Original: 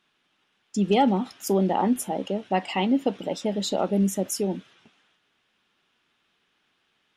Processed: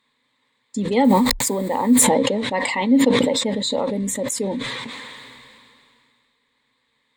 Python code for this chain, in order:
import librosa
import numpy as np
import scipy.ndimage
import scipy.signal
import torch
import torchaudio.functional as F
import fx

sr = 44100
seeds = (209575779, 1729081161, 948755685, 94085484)

y = fx.delta_hold(x, sr, step_db=-40.5, at=(1.04, 2.04))
y = fx.ripple_eq(y, sr, per_octave=1.0, db=15)
y = fx.sustainer(y, sr, db_per_s=24.0)